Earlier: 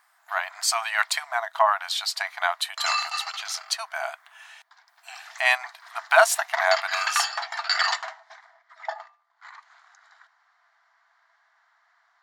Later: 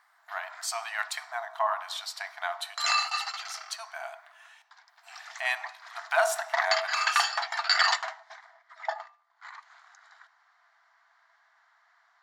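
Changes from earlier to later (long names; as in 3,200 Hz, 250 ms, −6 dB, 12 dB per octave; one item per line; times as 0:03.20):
speech −9.5 dB
reverb: on, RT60 0.75 s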